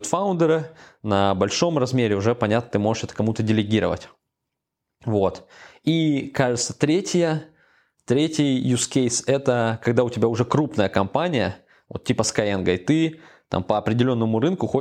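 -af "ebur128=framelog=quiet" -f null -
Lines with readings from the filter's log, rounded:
Integrated loudness:
  I:         -21.9 LUFS
  Threshold: -32.4 LUFS
Loudness range:
  LRA:         3.1 LU
  Threshold: -42.7 LUFS
  LRA low:   -24.4 LUFS
  LRA high:  -21.4 LUFS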